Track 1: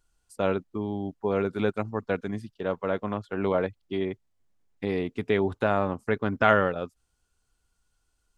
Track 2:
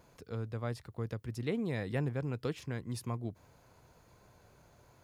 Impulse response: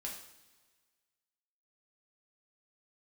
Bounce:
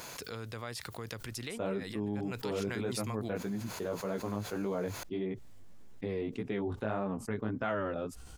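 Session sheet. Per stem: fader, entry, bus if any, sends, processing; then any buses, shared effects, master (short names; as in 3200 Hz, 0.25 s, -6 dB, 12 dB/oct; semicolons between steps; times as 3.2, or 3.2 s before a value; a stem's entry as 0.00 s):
-14.0 dB, 1.20 s, no send, low shelf 370 Hz +11 dB; chorus 1.7 Hz, delay 15 ms, depth 4.8 ms
2.01 s -13.5 dB -> 2.48 s -1.5 dB, 0.00 s, no send, tilt shelf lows -7 dB, about 1300 Hz; compressor, threshold -41 dBFS, peak gain reduction 9 dB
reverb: off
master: low shelf 140 Hz -8.5 dB; fast leveller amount 70%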